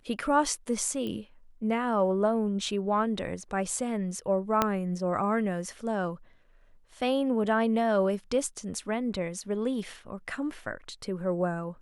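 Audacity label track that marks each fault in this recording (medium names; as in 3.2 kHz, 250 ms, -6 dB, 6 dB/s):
1.070000	1.070000	pop -24 dBFS
4.620000	4.620000	pop -9 dBFS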